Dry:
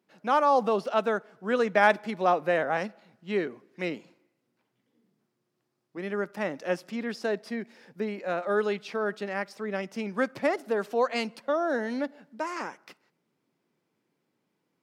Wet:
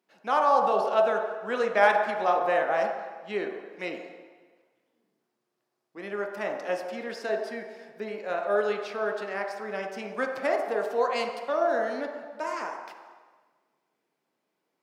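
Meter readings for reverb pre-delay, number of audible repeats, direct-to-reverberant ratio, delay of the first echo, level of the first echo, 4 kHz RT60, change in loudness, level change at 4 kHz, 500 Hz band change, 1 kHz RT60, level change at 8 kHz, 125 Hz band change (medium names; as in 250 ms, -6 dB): 7 ms, no echo, 1.0 dB, no echo, no echo, 1.3 s, +1.0 dB, -0.5 dB, +1.0 dB, 1.4 s, no reading, no reading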